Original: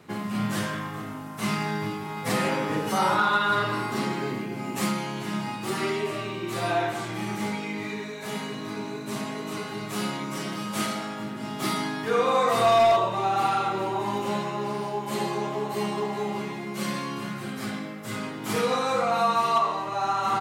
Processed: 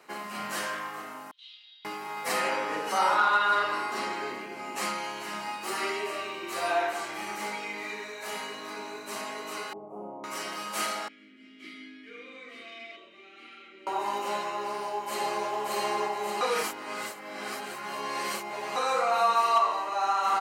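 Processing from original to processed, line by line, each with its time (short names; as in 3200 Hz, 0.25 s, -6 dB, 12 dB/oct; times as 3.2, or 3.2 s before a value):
1.31–1.85 Butterworth band-pass 3500 Hz, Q 5.3
2.4–5.04 high shelf 12000 Hz -11 dB
9.73–10.24 inverse Chebyshev low-pass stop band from 1600 Hz
11.08–13.87 vowel filter i
14.64–15.5 echo throw 0.58 s, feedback 70%, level -1.5 dB
16.41–18.76 reverse
whole clip: HPF 530 Hz 12 dB/oct; notch 3500 Hz, Q 8.4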